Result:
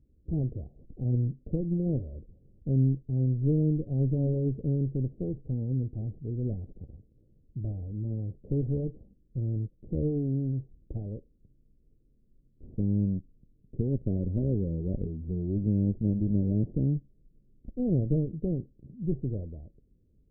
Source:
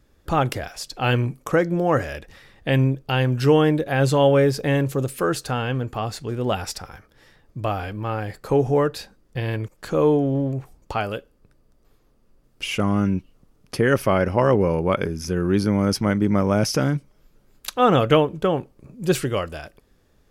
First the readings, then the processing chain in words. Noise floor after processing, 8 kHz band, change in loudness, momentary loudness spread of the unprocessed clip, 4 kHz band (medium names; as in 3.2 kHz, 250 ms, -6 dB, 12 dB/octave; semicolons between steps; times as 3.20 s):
-65 dBFS, under -40 dB, -8.5 dB, 13 LU, under -40 dB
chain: comb filter that takes the minimum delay 0.39 ms; one-sided clip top -27 dBFS, bottom -9.5 dBFS; Gaussian low-pass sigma 23 samples; trim -2 dB